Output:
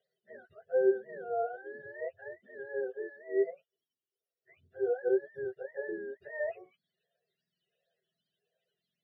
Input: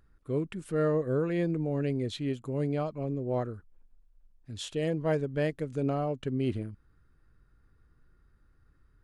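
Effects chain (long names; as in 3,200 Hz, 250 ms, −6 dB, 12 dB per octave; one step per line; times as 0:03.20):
frequency axis turned over on the octave scale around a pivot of 490 Hz
phaser with its sweep stopped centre 1,500 Hz, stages 8
hollow resonant body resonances 390/660/970 Hz, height 16 dB, ringing for 40 ms
formant filter swept between two vowels e-i 1.4 Hz
level +2.5 dB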